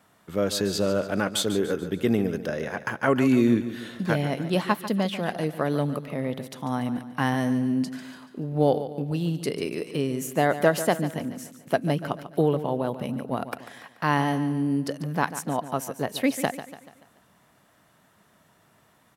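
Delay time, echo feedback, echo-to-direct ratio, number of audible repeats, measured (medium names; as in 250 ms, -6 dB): 144 ms, 47%, -11.5 dB, 4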